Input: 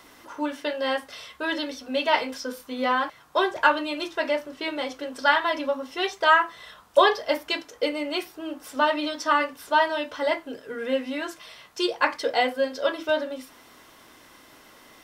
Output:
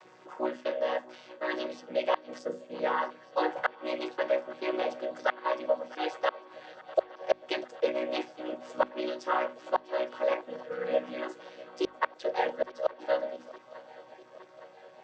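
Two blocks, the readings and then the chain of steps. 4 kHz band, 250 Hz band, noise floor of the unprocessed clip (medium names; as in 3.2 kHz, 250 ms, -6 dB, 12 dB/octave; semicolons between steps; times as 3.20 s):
-13.0 dB, -8.5 dB, -53 dBFS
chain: vocoder on a held chord major triad, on B2; inverted gate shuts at -11 dBFS, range -35 dB; resonant low shelf 370 Hz -7 dB, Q 1.5; hum notches 50/100/150/200/250 Hz; gain riding within 3 dB 0.5 s; shuffle delay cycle 864 ms, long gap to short 3:1, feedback 67%, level -20.5 dB; time-frequency box 2.39–2.75 s, 620–6300 Hz -7 dB; trim -2.5 dB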